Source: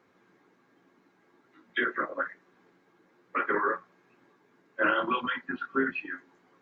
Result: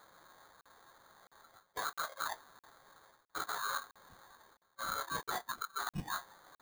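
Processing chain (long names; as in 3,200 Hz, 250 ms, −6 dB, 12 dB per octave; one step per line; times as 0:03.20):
high-pass filter 720 Hz 24 dB per octave
reversed playback
downward compressor 12 to 1, threshold −44 dBFS, peak gain reduction 21.5 dB
reversed playback
sample-rate reduction 2,700 Hz, jitter 0%
regular buffer underruns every 0.66 s, samples 2,048, zero, from 0:00.61
level +8 dB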